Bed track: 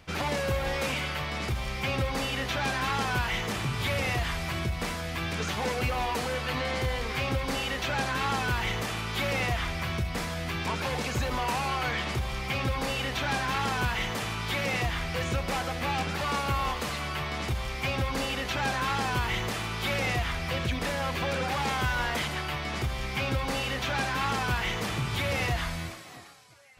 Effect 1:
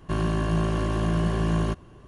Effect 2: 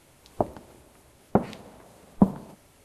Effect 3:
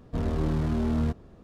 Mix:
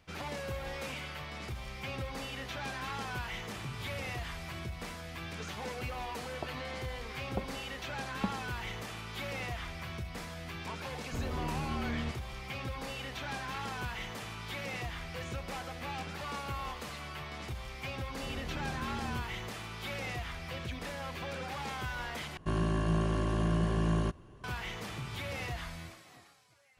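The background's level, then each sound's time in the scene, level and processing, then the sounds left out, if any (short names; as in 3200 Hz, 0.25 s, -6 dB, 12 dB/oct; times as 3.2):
bed track -10 dB
6.02 add 2 -16 dB
10.99 add 3 -10.5 dB
18.1 add 3 -14 dB
22.37 replace with 1 -5.5 dB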